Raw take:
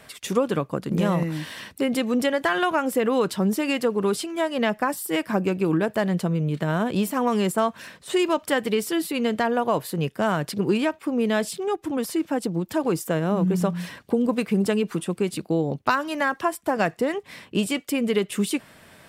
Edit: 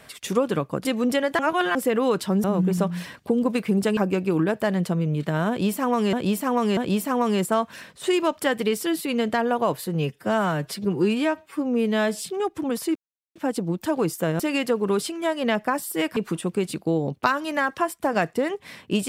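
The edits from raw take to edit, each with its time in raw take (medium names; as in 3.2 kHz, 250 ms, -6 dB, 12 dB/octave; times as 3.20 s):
0.85–1.95 s: delete
2.49–2.85 s: reverse
3.54–5.31 s: swap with 13.27–14.80 s
6.83–7.47 s: loop, 3 plays
9.93–11.50 s: stretch 1.5×
12.23 s: insert silence 0.40 s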